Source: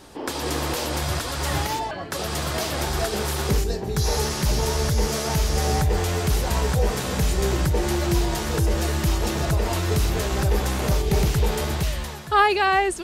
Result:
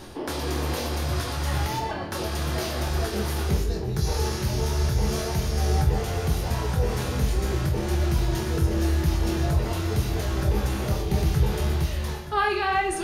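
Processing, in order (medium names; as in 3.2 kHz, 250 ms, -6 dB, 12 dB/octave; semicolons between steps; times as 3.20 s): bass shelf 240 Hz +6 dB; band-stop 7.7 kHz, Q 5.6; reverse; upward compressor, threshold -17 dBFS; reverse; flange 0.91 Hz, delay 8.3 ms, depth 8.1 ms, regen -42%; flutter echo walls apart 4.2 m, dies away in 0.23 s; on a send at -7 dB: reverberation RT60 1.6 s, pre-delay 3 ms; on the sum: trim -3.5 dB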